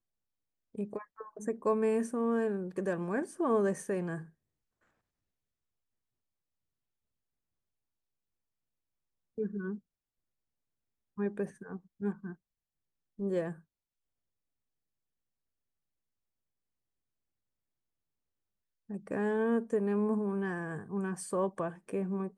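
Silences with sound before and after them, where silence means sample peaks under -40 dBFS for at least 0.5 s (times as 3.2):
4.22–9.38
9.76–11.18
12.32–13.19
13.52–18.9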